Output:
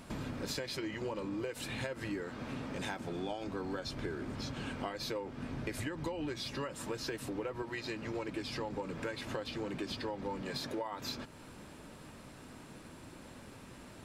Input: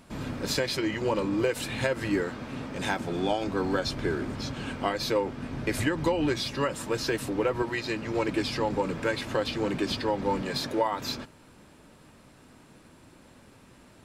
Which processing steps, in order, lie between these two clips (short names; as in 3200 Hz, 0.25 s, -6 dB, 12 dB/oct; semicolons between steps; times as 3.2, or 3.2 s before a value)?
compressor 4:1, threshold -41 dBFS, peak gain reduction 17 dB; gain +2.5 dB